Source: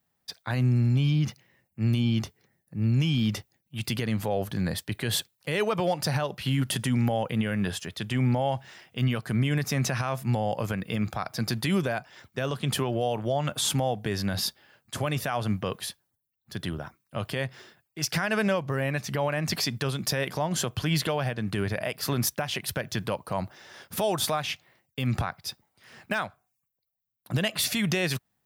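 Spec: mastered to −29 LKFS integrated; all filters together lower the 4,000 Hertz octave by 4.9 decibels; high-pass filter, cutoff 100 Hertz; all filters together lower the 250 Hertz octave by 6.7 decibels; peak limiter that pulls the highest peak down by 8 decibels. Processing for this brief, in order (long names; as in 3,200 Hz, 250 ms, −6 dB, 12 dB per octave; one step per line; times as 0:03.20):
high-pass filter 100 Hz
parametric band 250 Hz −9 dB
parametric band 4,000 Hz −6.5 dB
level +4.5 dB
brickwall limiter −18 dBFS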